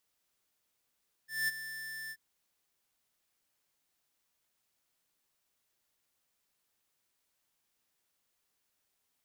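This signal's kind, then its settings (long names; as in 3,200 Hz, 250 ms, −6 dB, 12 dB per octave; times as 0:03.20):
note with an ADSR envelope square 1,770 Hz, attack 200 ms, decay 25 ms, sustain −12.5 dB, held 0.83 s, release 53 ms −30 dBFS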